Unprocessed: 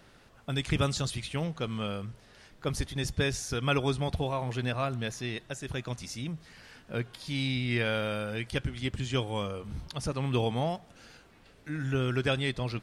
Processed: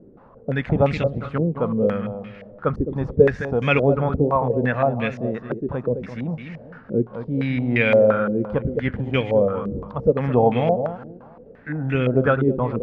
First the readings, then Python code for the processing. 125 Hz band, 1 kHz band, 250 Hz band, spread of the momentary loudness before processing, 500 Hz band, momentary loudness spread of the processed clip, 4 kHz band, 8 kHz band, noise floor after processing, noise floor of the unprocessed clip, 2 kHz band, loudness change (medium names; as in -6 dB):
+7.5 dB, +11.0 dB, +11.5 dB, 11 LU, +15.0 dB, 12 LU, -4.0 dB, under -20 dB, -47 dBFS, -58 dBFS, +8.0 dB, +10.5 dB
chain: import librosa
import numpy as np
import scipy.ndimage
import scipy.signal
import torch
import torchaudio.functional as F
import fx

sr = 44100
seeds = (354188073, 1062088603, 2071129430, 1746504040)

p1 = fx.peak_eq(x, sr, hz=320.0, db=-3.0, octaves=0.84)
p2 = fx.small_body(p1, sr, hz=(220.0, 480.0), ring_ms=20, db=10)
p3 = p2 + fx.echo_feedback(p2, sr, ms=213, feedback_pct=32, wet_db=-9, dry=0)
p4 = fx.filter_held_lowpass(p3, sr, hz=5.8, low_hz=360.0, high_hz=2300.0)
y = p4 * 10.0 ** (2.5 / 20.0)